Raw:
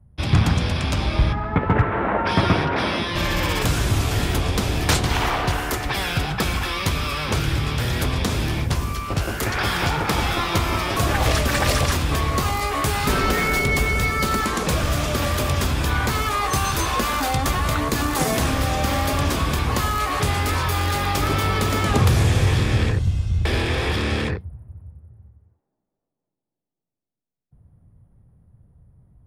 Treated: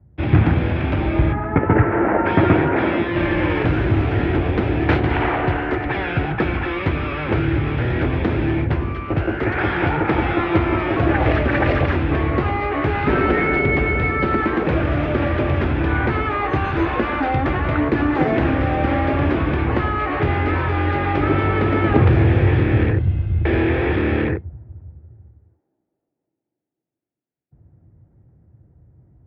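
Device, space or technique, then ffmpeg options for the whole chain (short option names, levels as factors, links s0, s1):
bass cabinet: -af "highpass=65,equalizer=f=190:t=q:w=4:g=-4,equalizer=f=330:t=q:w=4:g=9,equalizer=f=1100:t=q:w=4:g=-7,lowpass=f=2300:w=0.5412,lowpass=f=2300:w=1.3066,volume=1.5"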